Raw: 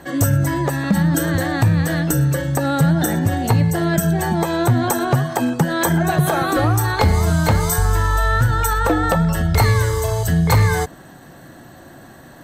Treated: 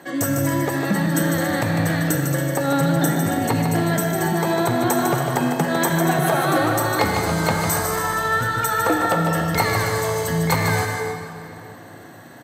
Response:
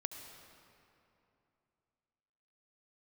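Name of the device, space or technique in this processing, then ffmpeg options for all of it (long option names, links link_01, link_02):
stadium PA: -filter_complex "[0:a]highpass=190,equalizer=frequency=2100:width_type=o:width=0.31:gain=3,aecho=1:1:151.6|279.9:0.501|0.282[link_01];[1:a]atrim=start_sample=2205[link_02];[link_01][link_02]afir=irnorm=-1:irlink=0"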